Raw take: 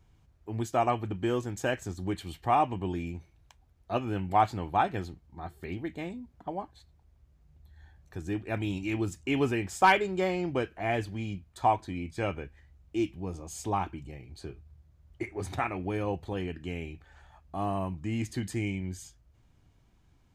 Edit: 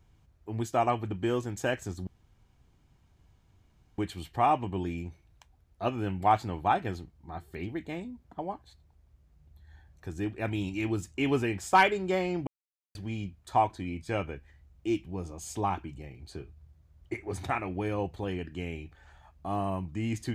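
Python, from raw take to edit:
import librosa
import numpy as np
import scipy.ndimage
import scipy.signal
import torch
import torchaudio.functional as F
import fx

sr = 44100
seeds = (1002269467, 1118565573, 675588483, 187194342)

y = fx.edit(x, sr, fx.insert_room_tone(at_s=2.07, length_s=1.91),
    fx.silence(start_s=10.56, length_s=0.48), tone=tone)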